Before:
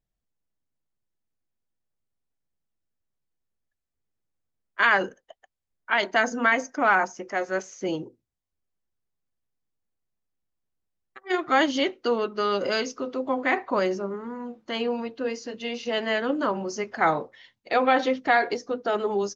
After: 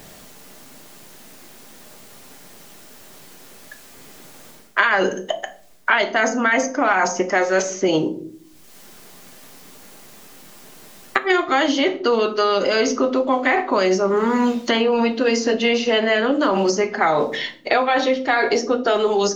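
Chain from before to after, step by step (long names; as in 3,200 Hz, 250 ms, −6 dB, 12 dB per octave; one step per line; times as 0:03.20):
parametric band 140 Hz −6.5 dB 0.96 octaves
reversed playback
downward compressor 12 to 1, threshold −33 dBFS, peak gain reduction 18 dB
reversed playback
convolution reverb RT60 0.40 s, pre-delay 5 ms, DRR 6 dB
boost into a limiter +25 dB
multiband upward and downward compressor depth 100%
level −7.5 dB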